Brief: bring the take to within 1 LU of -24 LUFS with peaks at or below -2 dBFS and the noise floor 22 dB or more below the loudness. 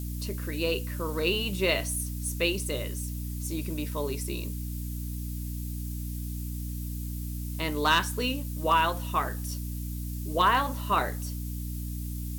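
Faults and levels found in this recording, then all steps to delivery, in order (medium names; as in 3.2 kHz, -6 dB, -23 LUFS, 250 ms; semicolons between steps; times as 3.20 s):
hum 60 Hz; highest harmonic 300 Hz; hum level -32 dBFS; noise floor -35 dBFS; noise floor target -52 dBFS; loudness -30.0 LUFS; peak level -12.0 dBFS; loudness target -24.0 LUFS
-> hum notches 60/120/180/240/300 Hz; noise print and reduce 17 dB; trim +6 dB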